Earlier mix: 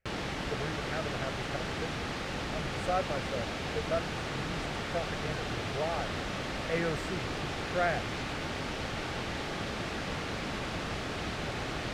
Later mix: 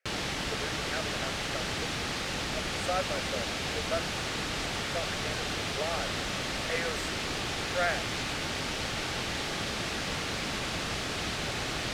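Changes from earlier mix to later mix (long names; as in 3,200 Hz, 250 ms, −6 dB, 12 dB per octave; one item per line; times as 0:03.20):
speech: add Chebyshev high-pass with heavy ripple 400 Hz, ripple 3 dB
master: add high-shelf EQ 2,900 Hz +11 dB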